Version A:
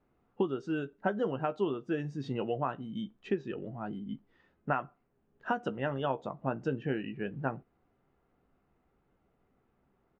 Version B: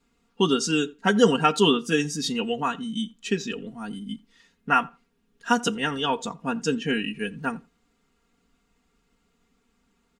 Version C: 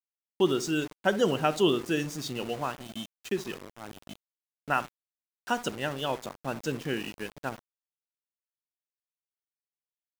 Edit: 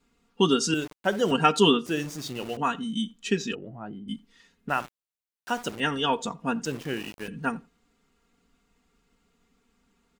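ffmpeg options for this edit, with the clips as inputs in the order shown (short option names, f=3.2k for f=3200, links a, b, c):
-filter_complex "[2:a]asplit=4[a][b][c][d];[1:a]asplit=6[e][f][g][h][i][j];[e]atrim=end=0.742[k];[a]atrim=start=0.738:end=1.312[l];[f]atrim=start=1.308:end=1.862[m];[b]atrim=start=1.858:end=2.572[n];[g]atrim=start=2.568:end=3.552[o];[0:a]atrim=start=3.548:end=4.082[p];[h]atrim=start=4.078:end=4.692[q];[c]atrim=start=4.688:end=5.802[r];[i]atrim=start=5.798:end=6.652[s];[d]atrim=start=6.648:end=7.282[t];[j]atrim=start=7.278[u];[k][l]acrossfade=d=0.004:c1=hsin:c2=hsin[v];[v][m]acrossfade=d=0.004:c1=hsin:c2=hsin[w];[w][n]acrossfade=d=0.004:c1=hsin:c2=hsin[x];[x][o]acrossfade=d=0.004:c1=hsin:c2=hsin[y];[y][p]acrossfade=d=0.004:c1=hsin:c2=hsin[z];[z][q]acrossfade=d=0.004:c1=hsin:c2=hsin[aa];[aa][r]acrossfade=d=0.004:c1=hsin:c2=hsin[ab];[ab][s]acrossfade=d=0.004:c1=hsin:c2=hsin[ac];[ac][t]acrossfade=d=0.004:c1=hsin:c2=hsin[ad];[ad][u]acrossfade=d=0.004:c1=hsin:c2=hsin"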